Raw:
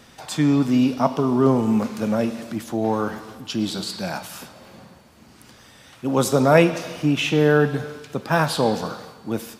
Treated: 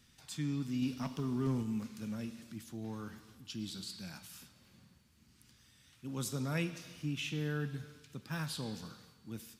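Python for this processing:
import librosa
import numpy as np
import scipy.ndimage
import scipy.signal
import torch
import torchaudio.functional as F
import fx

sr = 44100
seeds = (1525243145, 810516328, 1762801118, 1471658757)

y = fx.leveller(x, sr, passes=1, at=(0.82, 1.63))
y = fx.tone_stack(y, sr, knobs='6-0-2')
y = y * librosa.db_to_amplitude(1.0)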